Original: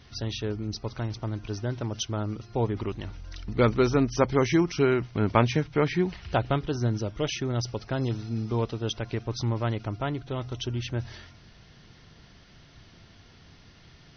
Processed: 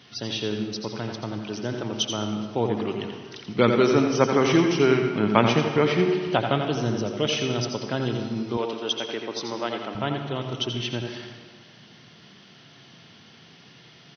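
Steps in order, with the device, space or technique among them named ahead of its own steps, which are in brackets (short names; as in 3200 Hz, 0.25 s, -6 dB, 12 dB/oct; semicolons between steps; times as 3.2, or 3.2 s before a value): PA in a hall (HPF 140 Hz 24 dB/oct; bell 3100 Hz +6 dB 0.45 oct; echo 85 ms -7.5 dB; reverb RT60 1.6 s, pre-delay 71 ms, DRR 6 dB); 8.57–9.95 HPF 320 Hz 12 dB/oct; gain +2.5 dB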